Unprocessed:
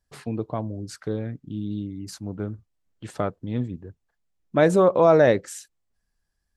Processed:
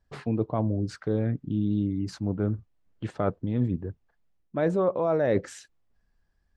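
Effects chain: reverse; compressor 8:1, threshold -27 dBFS, peak gain reduction 15 dB; reverse; tape spacing loss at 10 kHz 20 dB; gain +6.5 dB

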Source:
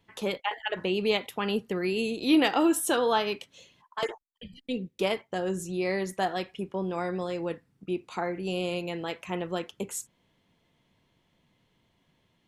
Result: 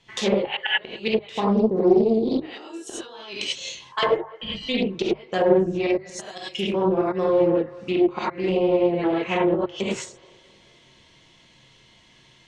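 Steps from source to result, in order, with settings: 1.33–2.37 spectral gain 1200–3600 Hz -17 dB; 5.91–8.08 high shelf 5700 Hz +11.5 dB; flipped gate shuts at -18 dBFS, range -29 dB; notches 50/100/150 Hz; band-limited delay 0.214 s, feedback 58%, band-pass 750 Hz, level -23 dB; non-linear reverb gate 0.12 s rising, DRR -7 dB; treble ducked by the level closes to 760 Hz, closed at -21 dBFS; LPF 7500 Hz 24 dB/oct; high shelf 2200 Hz +11.5 dB; Doppler distortion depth 0.3 ms; gain +4 dB

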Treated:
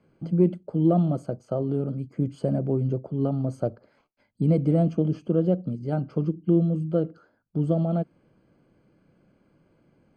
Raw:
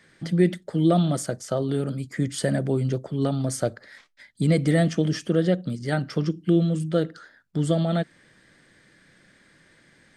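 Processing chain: running mean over 24 samples; added harmonics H 3 -33 dB, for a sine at -9.5 dBFS

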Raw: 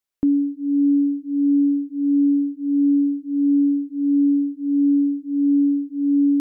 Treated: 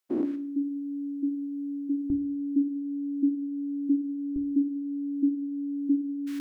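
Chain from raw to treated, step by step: spectral dilation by 0.24 s; HPF 360 Hz 12 dB/oct, from 2.1 s 110 Hz, from 4.36 s 46 Hz; limiter -17 dBFS, peak gain reduction 10.5 dB; reverb RT60 0.55 s, pre-delay 3 ms, DRR 6 dB; gain -3.5 dB

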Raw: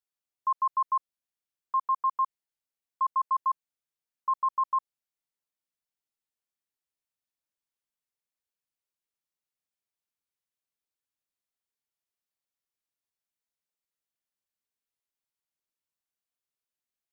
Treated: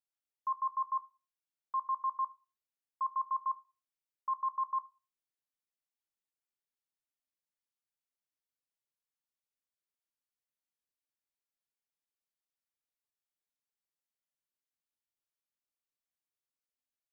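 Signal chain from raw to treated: reverb RT60 0.35 s, pre-delay 3 ms, DRR 11 dB; gain -7 dB

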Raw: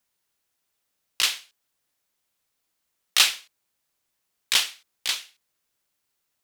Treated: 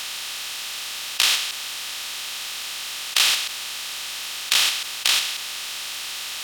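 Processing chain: per-bin compression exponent 0.2; in parallel at -2 dB: level quantiser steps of 18 dB; on the sum: gain -7 dB

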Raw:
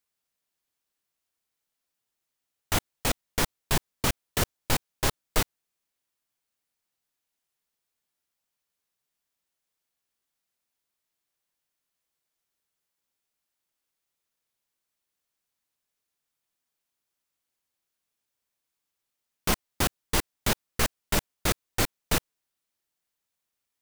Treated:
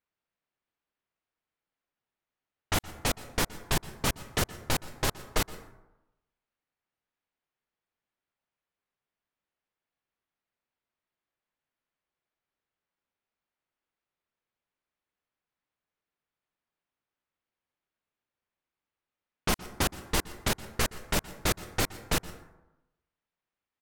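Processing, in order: low-pass opened by the level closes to 2400 Hz, open at -24 dBFS; limiter -15 dBFS, peak gain reduction 4 dB; echo 0.119 s -22.5 dB; on a send at -16.5 dB: reverb RT60 1.0 s, pre-delay 0.115 s

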